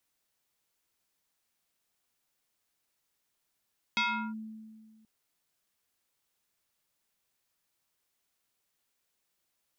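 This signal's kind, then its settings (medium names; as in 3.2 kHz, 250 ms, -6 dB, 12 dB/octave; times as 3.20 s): FM tone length 1.08 s, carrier 219 Hz, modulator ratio 5.39, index 3.1, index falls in 0.37 s linear, decay 1.83 s, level -24 dB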